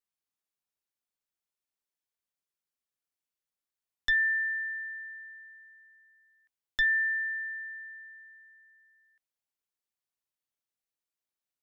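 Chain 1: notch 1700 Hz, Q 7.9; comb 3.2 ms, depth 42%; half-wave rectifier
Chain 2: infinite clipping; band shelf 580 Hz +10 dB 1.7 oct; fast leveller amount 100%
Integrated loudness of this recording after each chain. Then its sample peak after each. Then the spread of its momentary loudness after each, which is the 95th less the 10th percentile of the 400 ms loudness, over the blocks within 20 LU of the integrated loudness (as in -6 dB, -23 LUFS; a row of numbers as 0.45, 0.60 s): -39.0, -35.0 LUFS; -20.5, -28.0 dBFS; 21, 0 LU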